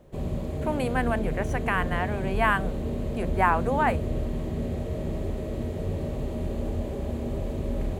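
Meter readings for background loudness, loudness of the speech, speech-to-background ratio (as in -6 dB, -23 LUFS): -31.5 LUFS, -28.0 LUFS, 3.5 dB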